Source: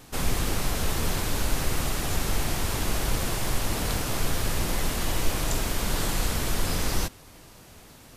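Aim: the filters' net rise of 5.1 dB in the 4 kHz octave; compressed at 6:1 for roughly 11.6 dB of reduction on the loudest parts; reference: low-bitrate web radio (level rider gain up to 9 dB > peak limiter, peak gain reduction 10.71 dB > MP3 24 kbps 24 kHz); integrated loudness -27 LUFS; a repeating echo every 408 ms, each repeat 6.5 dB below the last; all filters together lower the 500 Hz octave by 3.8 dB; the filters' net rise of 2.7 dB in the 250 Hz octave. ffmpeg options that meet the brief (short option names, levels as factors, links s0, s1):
-af "equalizer=f=250:t=o:g=5.5,equalizer=f=500:t=o:g=-7,equalizer=f=4000:t=o:g=6.5,acompressor=threshold=0.0316:ratio=6,aecho=1:1:408|816|1224|1632|2040|2448:0.473|0.222|0.105|0.0491|0.0231|0.0109,dynaudnorm=m=2.82,alimiter=level_in=2:limit=0.0631:level=0:latency=1,volume=0.501,volume=5.01" -ar 24000 -c:a libmp3lame -b:a 24k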